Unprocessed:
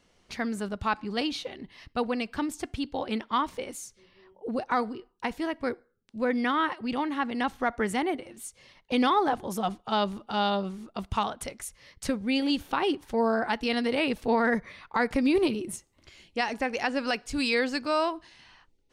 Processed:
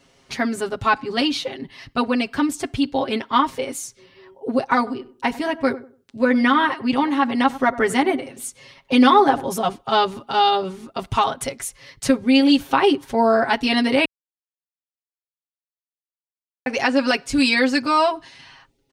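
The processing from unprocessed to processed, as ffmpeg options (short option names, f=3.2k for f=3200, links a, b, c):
-filter_complex "[0:a]asettb=1/sr,asplit=3[a][b][c];[a]atrim=end=4.774[d];[b]atrim=start=4.77:end=9.44,asetpts=PTS-STARTPTS,afade=t=in:d=0.004:c=qsin,afade=t=out:st=4.666:d=0.004:c=qsin,asplit=2[e][f];[f]adelay=96,lowpass=f=950:p=1,volume=-14.5dB,asplit=2[g][h];[h]adelay=96,lowpass=f=950:p=1,volume=0.26,asplit=2[i][j];[j]adelay=96,lowpass=f=950:p=1,volume=0.26[k];[e][g][i][k]amix=inputs=4:normalize=0,atrim=end_sample=205947[l];[c]atrim=start=9.436[m];[d][l]acrossfade=d=0.004:c1=hsin:c2=qsin[n];[n][m]acrossfade=d=0.004:c1=qsin:c2=hsin,asplit=3[o][p][q];[o]atrim=end=14.05,asetpts=PTS-STARTPTS,afade=t=out:st=14.046:d=0.004:c=hsin[r];[p]atrim=start=14.05:end=16.66,asetpts=PTS-STARTPTS,volume=0[s];[q]atrim=start=16.66,asetpts=PTS-STARTPTS,afade=t=in:d=0.004:c=hsin[t];[r][s][t]concat=n=3:v=0:a=1,highpass=41,aecho=1:1:7.4:0.96,volume=6.5dB"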